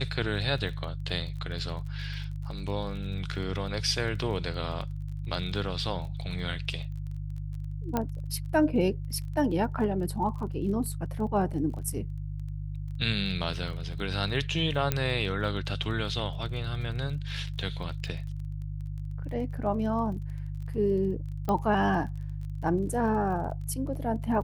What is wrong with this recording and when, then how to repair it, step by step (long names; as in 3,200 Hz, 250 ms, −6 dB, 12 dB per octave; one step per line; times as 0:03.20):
surface crackle 26 per second −39 dBFS
mains hum 50 Hz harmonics 3 −35 dBFS
0:07.97: click −14 dBFS
0:14.92: click −10 dBFS
0:21.49: click −17 dBFS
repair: click removal
hum removal 50 Hz, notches 3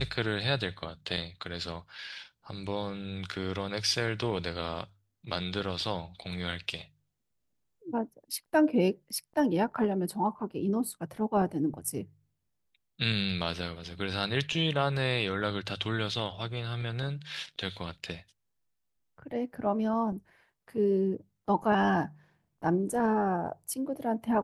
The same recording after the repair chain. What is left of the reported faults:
0:21.49: click